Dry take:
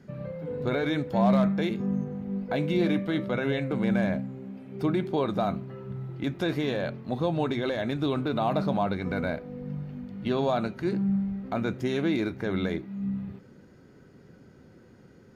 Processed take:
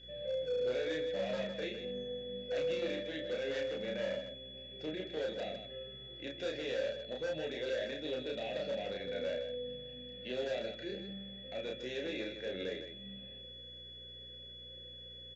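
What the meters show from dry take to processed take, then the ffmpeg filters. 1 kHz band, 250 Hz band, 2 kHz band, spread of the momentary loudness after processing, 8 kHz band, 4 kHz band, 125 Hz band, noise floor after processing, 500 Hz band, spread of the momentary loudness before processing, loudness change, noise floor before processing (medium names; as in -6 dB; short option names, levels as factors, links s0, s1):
-19.0 dB, -18.5 dB, -8.0 dB, 12 LU, no reading, 0.0 dB, -21.5 dB, -51 dBFS, -6.0 dB, 11 LU, -11.0 dB, -54 dBFS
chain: -filter_complex "[0:a]highshelf=f=4800:g=10.5,acrossover=split=320|2200[s0][s1][s2];[s1]asoftclip=type=tanh:threshold=0.0316[s3];[s0][s3][s2]amix=inputs=3:normalize=0,aeval=exprs='val(0)+0.00794*sin(2*PI*3400*n/s)':c=same,asplit=3[s4][s5][s6];[s4]bandpass=f=530:t=q:w=8,volume=1[s7];[s5]bandpass=f=1840:t=q:w=8,volume=0.501[s8];[s6]bandpass=f=2480:t=q:w=8,volume=0.355[s9];[s7][s8][s9]amix=inputs=3:normalize=0,volume=59.6,asoftclip=hard,volume=0.0168,crystalizer=i=2:c=0,aeval=exprs='val(0)+0.000794*(sin(2*PI*60*n/s)+sin(2*PI*2*60*n/s)/2+sin(2*PI*3*60*n/s)/3+sin(2*PI*4*60*n/s)/4+sin(2*PI*5*60*n/s)/5)':c=same,aecho=1:1:32.07|157.4:0.794|0.398,aresample=16000,aresample=44100,volume=1.12"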